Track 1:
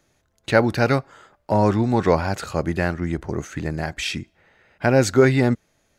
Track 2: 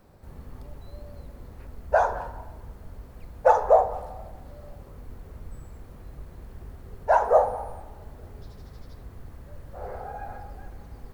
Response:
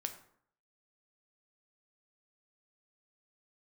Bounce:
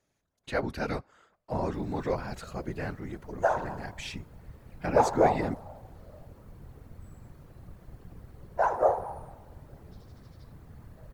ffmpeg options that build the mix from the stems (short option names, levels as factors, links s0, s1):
-filter_complex "[0:a]volume=0.447[s0];[1:a]adelay=1500,volume=1.06[s1];[s0][s1]amix=inputs=2:normalize=0,afftfilt=real='hypot(re,im)*cos(2*PI*random(0))':imag='hypot(re,im)*sin(2*PI*random(1))':win_size=512:overlap=0.75"